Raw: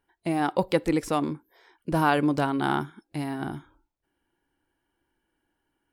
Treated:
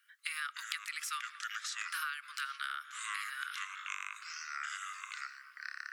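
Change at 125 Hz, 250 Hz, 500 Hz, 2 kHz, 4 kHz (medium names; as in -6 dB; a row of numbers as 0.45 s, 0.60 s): under -40 dB, under -40 dB, under -40 dB, -2.5 dB, -0.5 dB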